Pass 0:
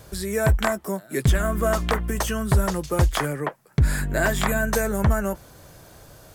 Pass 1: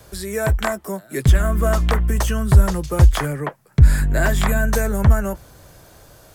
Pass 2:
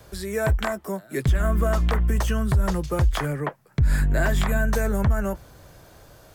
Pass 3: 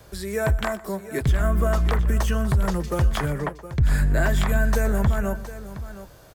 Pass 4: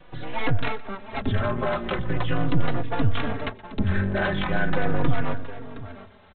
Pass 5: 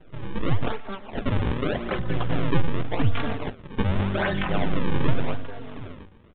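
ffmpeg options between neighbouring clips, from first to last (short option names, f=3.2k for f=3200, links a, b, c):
-filter_complex "[0:a]equalizer=f=150:w=0.89:g=-3,acrossover=split=170|620|2200[a][b][c][d];[a]dynaudnorm=f=220:g=11:m=11dB[e];[e][b][c][d]amix=inputs=4:normalize=0,volume=1dB"
-af "equalizer=f=10k:t=o:w=1.5:g=-5,alimiter=limit=-10.5dB:level=0:latency=1:release=103,volume=-2dB"
-af "aecho=1:1:122|717:0.119|0.211"
-filter_complex "[0:a]aresample=8000,aeval=exprs='abs(val(0))':c=same,aresample=44100,asplit=2[a][b];[b]adelay=3.6,afreqshift=-0.41[c];[a][c]amix=inputs=2:normalize=1,volume=4dB"
-af "acrusher=samples=37:mix=1:aa=0.000001:lfo=1:lforange=59.2:lforate=0.86,aresample=8000,aresample=44100"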